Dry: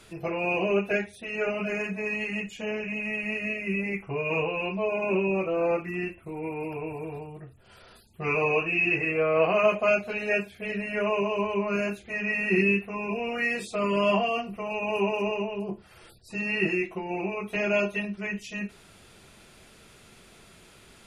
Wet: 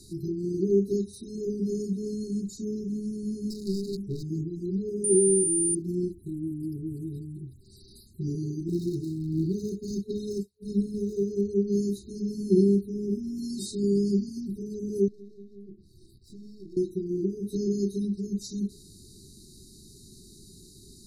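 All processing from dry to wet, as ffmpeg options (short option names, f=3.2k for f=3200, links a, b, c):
-filter_complex "[0:a]asettb=1/sr,asplit=3[a][b][c];[a]atrim=end=3.504[d];[b]atrim=start=3.5:end=4.23,asetpts=PTS-STARTPTS,afade=t=in:d=0.004:c=qsin,afade=t=out:st=0.726:d=0.004:c=qsin,bandreject=f=50:t=h:w=6,bandreject=f=100:t=h:w=6,bandreject=f=150:t=h:w=6,bandreject=f=200:t=h:w=6,bandreject=f=250:t=h:w=6,aeval=exprs='clip(val(0),-1,0.0282)':c=same[e];[c]atrim=start=4.226[f];[d][e]acrossfade=d=0.004:c1=hsin:c2=qsin[g];[g][f]acrossfade=d=0.004:c1=qsin:c2=hsin,asettb=1/sr,asplit=3[h][i][j];[h]atrim=end=5.044[k];[i]atrim=start=5.04:end=5.75,asetpts=PTS-STARTPTS,afade=t=in:d=0.004:c=qsin,afade=t=out:st=0.706:d=0.004:c=qsin,aecho=1:1:2.3:0.41,atrim=end_sample=31311,aeval=exprs='val(0)+0.0355*sin(2*PI*9200*n/s)':c=same,bandreject=f=6.7k:w=8.2[l];[j]atrim=start=5.746[m];[k][l]acrossfade=d=0.004:c1=hsin:c2=qsin[n];[n][m]acrossfade=d=0.004:c1=qsin:c2=hsin,asettb=1/sr,asplit=3[o][p][q];[o]atrim=end=8.684[r];[p]atrim=start=8.68:end=11.29,asetpts=PTS-STARTPTS,afade=t=in:d=0.004:c=qsin,afade=t=out:st=2.606:d=0.004:c=qsin,agate=range=-33dB:threshold=-30dB:ratio=3:release=100:detection=peak,aphaser=in_gain=1:out_gain=1:delay=2:decay=0.45:speed=1.4:type=triangular[s];[q]atrim=start=11.286[t];[r][s]acrossfade=d=0.004:c1=hsin:c2=qsin[u];[u][t]acrossfade=d=0.004:c1=qsin:c2=hsin,asettb=1/sr,asplit=3[v][w][x];[v]atrim=end=15.084[y];[w]atrim=start=15.08:end=16.77,asetpts=PTS-STARTPTS,afade=t=in:d=0.004:c=qsin,afade=t=out:st=1.686:d=0.004:c=qsin,aeval=exprs='if(lt(val(0),0),0.447*val(0),val(0))':c=same,highshelf=f=2.9k:g=-11.5,acompressor=threshold=-49dB:ratio=3:attack=3.2:release=140:knee=1:detection=peak[z];[x]atrim=start=16.766[aa];[y][z]acrossfade=d=0.004:c1=hsin:c2=qsin[ab];[ab][aa]acrossfade=d=0.004:c1=qsin:c2=hsin,afftfilt=real='re*(1-between(b*sr/4096,420,3700))':imag='im*(1-between(b*sr/4096,420,3700))':win_size=4096:overlap=0.75,equalizer=f=730:t=o:w=1.3:g=-7,volume=5.5dB"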